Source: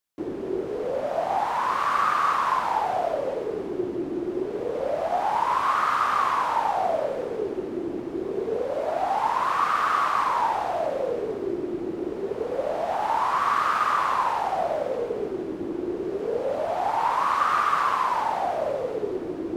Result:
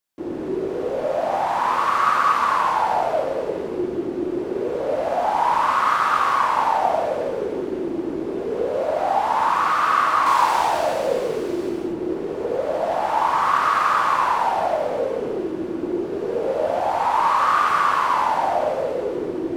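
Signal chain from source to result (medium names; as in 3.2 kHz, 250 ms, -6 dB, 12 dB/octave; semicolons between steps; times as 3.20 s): 10.26–11.69 s: treble shelf 2.6 kHz +11.5 dB; gated-style reverb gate 270 ms flat, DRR -2.5 dB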